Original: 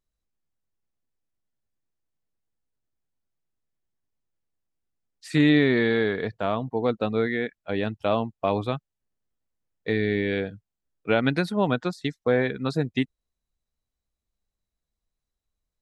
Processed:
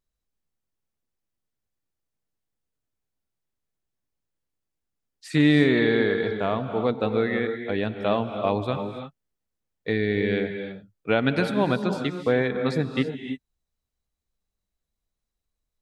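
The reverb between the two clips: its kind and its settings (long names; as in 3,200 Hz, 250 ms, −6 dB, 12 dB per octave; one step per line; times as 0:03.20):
reverb whose tail is shaped and stops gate 350 ms rising, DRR 7 dB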